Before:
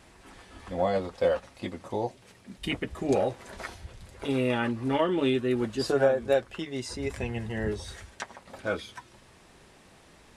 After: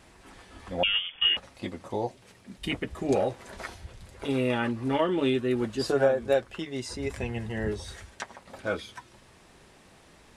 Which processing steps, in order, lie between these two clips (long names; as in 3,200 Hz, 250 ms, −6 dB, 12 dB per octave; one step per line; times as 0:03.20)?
0:00.83–0:01.37: voice inversion scrambler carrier 3,400 Hz